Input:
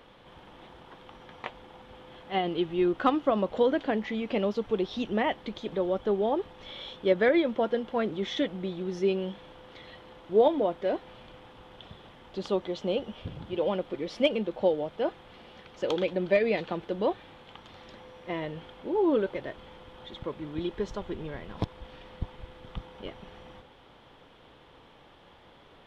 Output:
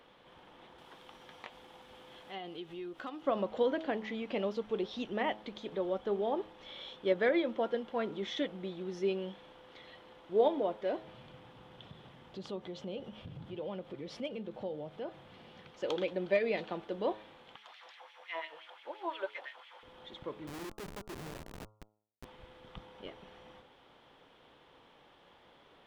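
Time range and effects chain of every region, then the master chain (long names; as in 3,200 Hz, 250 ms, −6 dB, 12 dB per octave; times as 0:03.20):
0:00.78–0:03.22: downward compressor 2.5 to 1, threshold −39 dBFS + high-shelf EQ 4,400 Hz +11 dB
0:10.98–0:15.71: parametric band 130 Hz +12 dB 1.3 octaves + downward compressor 2 to 1, threshold −36 dBFS
0:17.56–0:19.83: parametric band 140 Hz −4 dB 1.6 octaves + auto-filter high-pass sine 5.8 Hz 660–2,600 Hz
0:20.47–0:22.25: notch filter 500 Hz, Q 15 + comparator with hysteresis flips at −38.5 dBFS
whole clip: low-shelf EQ 130 Hz −10 dB; hum removal 106.9 Hz, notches 13; level −5 dB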